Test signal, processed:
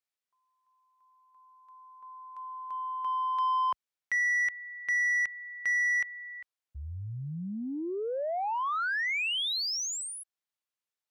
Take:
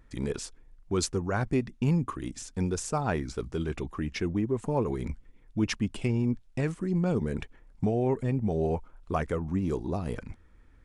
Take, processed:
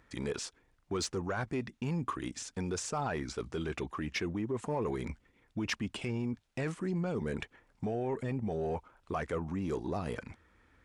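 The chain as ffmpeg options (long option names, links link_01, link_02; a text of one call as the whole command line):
ffmpeg -i in.wav -filter_complex "[0:a]acrossover=split=8200[link_01][link_02];[link_02]acompressor=threshold=-50dB:ratio=4:attack=1:release=60[link_03];[link_01][link_03]amix=inputs=2:normalize=0,highpass=58,alimiter=limit=-24dB:level=0:latency=1:release=14,asplit=2[link_04][link_05];[link_05]highpass=frequency=720:poles=1,volume=7dB,asoftclip=type=tanh:threshold=-24dB[link_06];[link_04][link_06]amix=inputs=2:normalize=0,lowpass=frequency=5600:poles=1,volume=-6dB" out.wav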